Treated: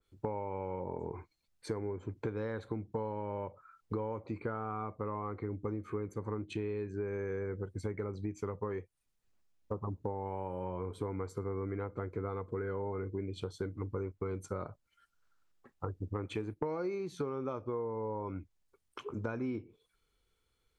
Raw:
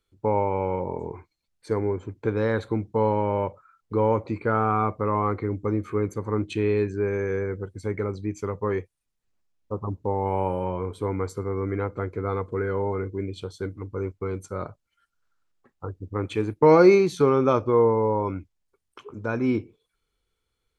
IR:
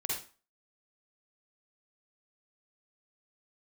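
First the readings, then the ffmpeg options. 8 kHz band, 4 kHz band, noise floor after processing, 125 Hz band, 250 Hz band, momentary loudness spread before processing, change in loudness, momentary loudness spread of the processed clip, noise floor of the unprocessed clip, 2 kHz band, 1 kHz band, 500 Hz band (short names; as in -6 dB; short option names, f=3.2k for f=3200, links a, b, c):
n/a, -11.0 dB, -79 dBFS, -11.0 dB, -13.0 dB, 13 LU, -14.0 dB, 4 LU, -79 dBFS, -14.0 dB, -14.5 dB, -14.5 dB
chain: -af "acompressor=threshold=-33dB:ratio=16,adynamicequalizer=threshold=0.00126:dfrequency=2000:dqfactor=0.7:tfrequency=2000:tqfactor=0.7:attack=5:release=100:ratio=0.375:range=2:mode=cutabove:tftype=highshelf"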